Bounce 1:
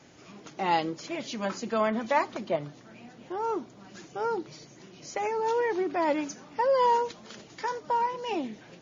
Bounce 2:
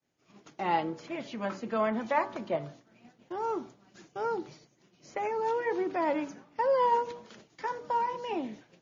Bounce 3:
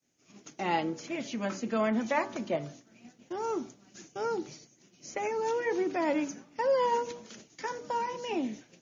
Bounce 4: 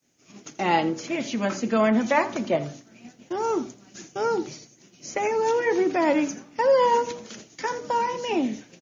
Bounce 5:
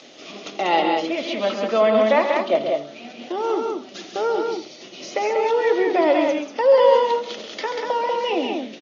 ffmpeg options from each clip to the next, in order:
-filter_complex "[0:a]bandreject=f=95.91:t=h:w=4,bandreject=f=191.82:t=h:w=4,bandreject=f=287.73:t=h:w=4,bandreject=f=383.64:t=h:w=4,bandreject=f=479.55:t=h:w=4,bandreject=f=575.46:t=h:w=4,bandreject=f=671.37:t=h:w=4,bandreject=f=767.28:t=h:w=4,bandreject=f=863.19:t=h:w=4,bandreject=f=959.1:t=h:w=4,bandreject=f=1055.01:t=h:w=4,bandreject=f=1150.92:t=h:w=4,bandreject=f=1246.83:t=h:w=4,bandreject=f=1342.74:t=h:w=4,bandreject=f=1438.65:t=h:w=4,bandreject=f=1534.56:t=h:w=4,bandreject=f=1630.47:t=h:w=4,bandreject=f=1726.38:t=h:w=4,agate=range=0.0224:threshold=0.00891:ratio=3:detection=peak,acrossover=split=580|2900[s0][s1][s2];[s2]acompressor=threshold=0.00178:ratio=6[s3];[s0][s1][s3]amix=inputs=3:normalize=0,volume=0.794"
-af "equalizer=f=250:t=o:w=0.67:g=5,equalizer=f=1000:t=o:w=0.67:g=-4,equalizer=f=2500:t=o:w=0.67:g=3,equalizer=f=6300:t=o:w=0.67:g=12"
-af "aecho=1:1:83:0.133,volume=2.37"
-af "acompressor=mode=upward:threshold=0.0562:ratio=2.5,highpass=420,equalizer=f=610:t=q:w=4:g=3,equalizer=f=940:t=q:w=4:g=-5,equalizer=f=1600:t=q:w=4:g=-9,equalizer=f=2300:t=q:w=4:g=-4,equalizer=f=3500:t=q:w=4:g=4,lowpass=f=4300:w=0.5412,lowpass=f=4300:w=1.3066,aecho=1:1:134.1|189.5:0.398|0.631,volume=1.78"

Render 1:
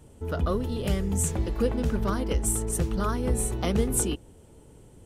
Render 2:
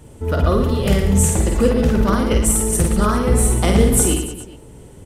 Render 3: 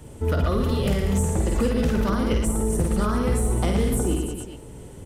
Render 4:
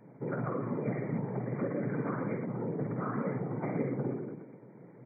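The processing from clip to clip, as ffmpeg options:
-af "equalizer=f=2000:t=o:w=0.33:g=3,aecho=1:1:50|112.5|190.6|288.3|410.4:0.631|0.398|0.251|0.158|0.1,volume=2.66"
-filter_complex "[0:a]acrossover=split=380|1300[s0][s1][s2];[s0]acompressor=threshold=0.1:ratio=4[s3];[s1]acompressor=threshold=0.0316:ratio=4[s4];[s2]acompressor=threshold=0.0178:ratio=4[s5];[s3][s4][s5]amix=inputs=3:normalize=0,volume=5.31,asoftclip=hard,volume=0.188"
-af "afftfilt=real='hypot(re,im)*cos(2*PI*random(0))':imag='hypot(re,im)*sin(2*PI*random(1))':win_size=512:overlap=0.75,afftfilt=real='re*between(b*sr/4096,110,2400)':imag='im*between(b*sr/4096,110,2400)':win_size=4096:overlap=0.75,volume=0.668"

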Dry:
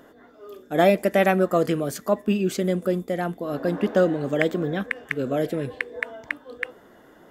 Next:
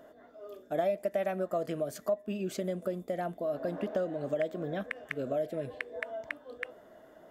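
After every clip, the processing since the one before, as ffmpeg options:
-af "equalizer=f=630:t=o:w=0.27:g=14.5,acompressor=threshold=0.0708:ratio=3,volume=0.398"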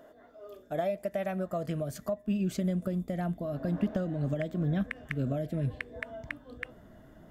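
-af "asubboost=boost=11.5:cutoff=150"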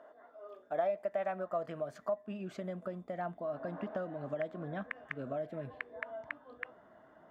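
-af "bandpass=f=1000:t=q:w=1.3:csg=0,volume=1.41"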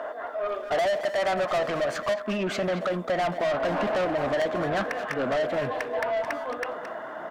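-filter_complex "[0:a]asplit=2[s0][s1];[s1]highpass=f=720:p=1,volume=35.5,asoftclip=type=tanh:threshold=0.106[s2];[s0][s2]amix=inputs=2:normalize=0,lowpass=f=4200:p=1,volume=0.501,asplit=2[s3][s4];[s4]adelay=220,highpass=300,lowpass=3400,asoftclip=type=hard:threshold=0.0335,volume=0.447[s5];[s3][s5]amix=inputs=2:normalize=0,volume=1.19"

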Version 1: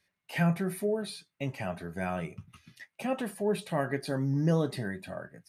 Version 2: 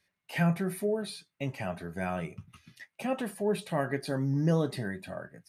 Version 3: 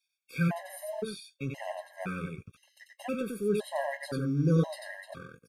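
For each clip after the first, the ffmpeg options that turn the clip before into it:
-af anull
-filter_complex "[0:a]acrossover=split=2100[s0][s1];[s0]aeval=exprs='sgn(val(0))*max(abs(val(0))-0.00335,0)':c=same[s2];[s2][s1]amix=inputs=2:normalize=0,aecho=1:1:92:0.708,afftfilt=real='re*gt(sin(2*PI*0.97*pts/sr)*(1-2*mod(floor(b*sr/1024/540),2)),0)':imag='im*gt(sin(2*PI*0.97*pts/sr)*(1-2*mod(floor(b*sr/1024/540),2)),0)':win_size=1024:overlap=0.75"

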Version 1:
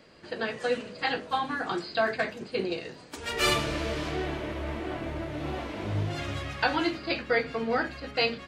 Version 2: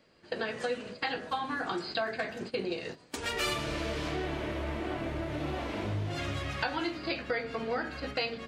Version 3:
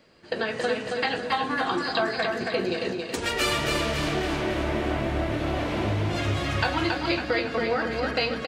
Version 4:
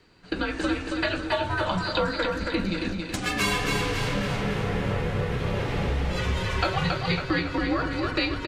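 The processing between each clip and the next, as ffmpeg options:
-af "bandreject=f=75.86:t=h:w=4,bandreject=f=151.72:t=h:w=4,bandreject=f=227.58:t=h:w=4,bandreject=f=303.44:t=h:w=4,bandreject=f=379.3:t=h:w=4,bandreject=f=455.16:t=h:w=4,bandreject=f=531.02:t=h:w=4,bandreject=f=606.88:t=h:w=4,bandreject=f=682.74:t=h:w=4,bandreject=f=758.6:t=h:w=4,bandreject=f=834.46:t=h:w=4,bandreject=f=910.32:t=h:w=4,bandreject=f=986.18:t=h:w=4,bandreject=f=1062.04:t=h:w=4,bandreject=f=1137.9:t=h:w=4,bandreject=f=1213.76:t=h:w=4,bandreject=f=1289.62:t=h:w=4,bandreject=f=1365.48:t=h:w=4,bandreject=f=1441.34:t=h:w=4,bandreject=f=1517.2:t=h:w=4,bandreject=f=1593.06:t=h:w=4,bandreject=f=1668.92:t=h:w=4,bandreject=f=1744.78:t=h:w=4,bandreject=f=1820.64:t=h:w=4,bandreject=f=1896.5:t=h:w=4,bandreject=f=1972.36:t=h:w=4,bandreject=f=2048.22:t=h:w=4,bandreject=f=2124.08:t=h:w=4,agate=range=0.178:threshold=0.00891:ratio=16:detection=peak,acompressor=threshold=0.01:ratio=3,volume=2.11"
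-af "aecho=1:1:275|550|825|1100|1375|1650:0.631|0.297|0.139|0.0655|0.0308|0.0145,volume=2"
-af "afreqshift=-170"

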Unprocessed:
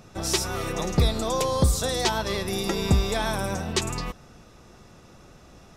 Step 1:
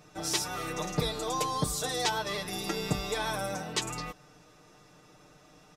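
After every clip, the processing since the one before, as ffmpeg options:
-af "lowshelf=f=150:g=-10.5,aecho=1:1:6.6:0.87,volume=0.473"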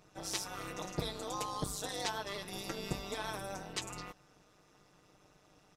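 -af "tremolo=f=200:d=0.857,volume=0.631"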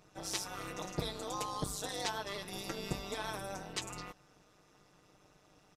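-af "aresample=32000,aresample=44100"

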